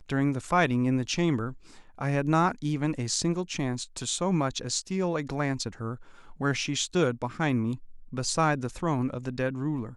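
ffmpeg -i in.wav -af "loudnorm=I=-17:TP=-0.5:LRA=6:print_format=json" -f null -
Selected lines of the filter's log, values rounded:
"input_i" : "-28.6",
"input_tp" : "-11.0",
"input_lra" : "2.3",
"input_thresh" : "-38.9",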